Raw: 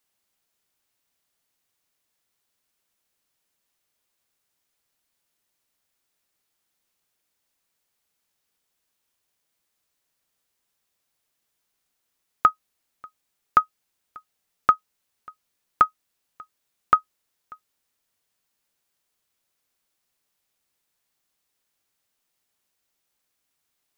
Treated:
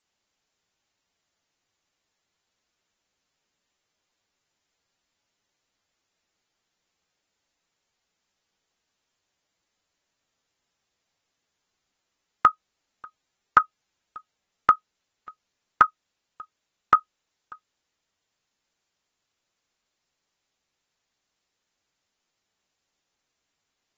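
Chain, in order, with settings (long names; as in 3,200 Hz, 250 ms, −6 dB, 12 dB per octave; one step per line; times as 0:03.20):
AAC 24 kbit/s 48,000 Hz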